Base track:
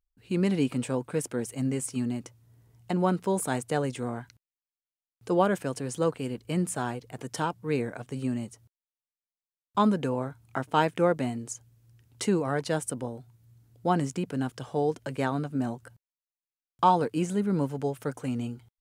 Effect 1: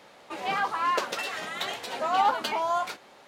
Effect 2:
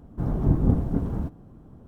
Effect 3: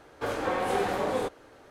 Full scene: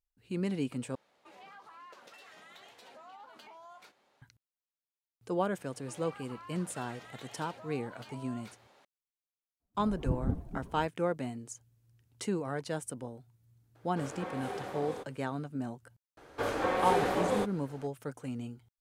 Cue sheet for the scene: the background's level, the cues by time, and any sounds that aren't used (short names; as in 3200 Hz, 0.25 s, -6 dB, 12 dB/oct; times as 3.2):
base track -7.5 dB
0.95 replace with 1 -18 dB + compressor 4:1, threshold -32 dBFS
5.58 add 1 -10 dB + compressor, threshold -38 dBFS
9.6 add 2 -8.5 dB + per-bin expansion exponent 2
13.75 add 3 -12 dB + HPF 58 Hz
16.17 add 3 -1.5 dB